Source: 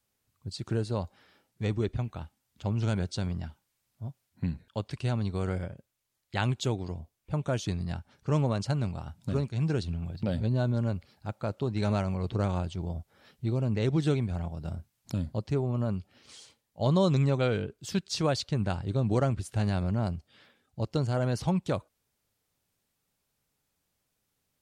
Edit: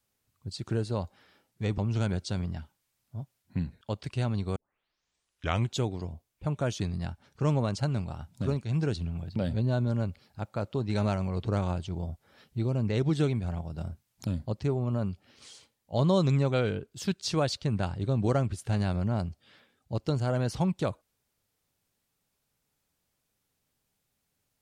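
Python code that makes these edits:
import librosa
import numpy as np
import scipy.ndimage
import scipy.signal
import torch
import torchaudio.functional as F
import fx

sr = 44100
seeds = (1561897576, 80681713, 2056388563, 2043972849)

y = fx.edit(x, sr, fx.cut(start_s=1.78, length_s=0.87),
    fx.tape_start(start_s=5.43, length_s=1.14), tone=tone)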